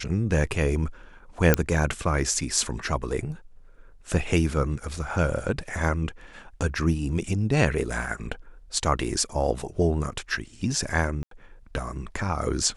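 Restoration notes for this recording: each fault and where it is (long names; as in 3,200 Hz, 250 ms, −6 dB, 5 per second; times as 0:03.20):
0:01.54: click −2 dBFS
0:11.23–0:11.31: drop-out 83 ms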